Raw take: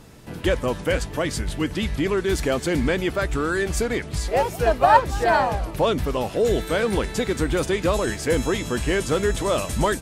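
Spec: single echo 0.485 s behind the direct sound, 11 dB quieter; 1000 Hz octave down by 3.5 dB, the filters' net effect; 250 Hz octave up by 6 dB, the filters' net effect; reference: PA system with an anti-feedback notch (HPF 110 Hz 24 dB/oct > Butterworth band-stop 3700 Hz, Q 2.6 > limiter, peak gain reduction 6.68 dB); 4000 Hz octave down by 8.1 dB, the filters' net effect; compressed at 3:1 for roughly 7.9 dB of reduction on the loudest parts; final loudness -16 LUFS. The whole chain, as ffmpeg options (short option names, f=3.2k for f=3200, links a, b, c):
-af "equalizer=f=250:t=o:g=8.5,equalizer=f=1k:t=o:g=-5,equalizer=f=4k:t=o:g=-4.5,acompressor=threshold=-24dB:ratio=3,highpass=f=110:w=0.5412,highpass=f=110:w=1.3066,asuperstop=centerf=3700:order=8:qfactor=2.6,aecho=1:1:485:0.282,volume=13dB,alimiter=limit=-6.5dB:level=0:latency=1"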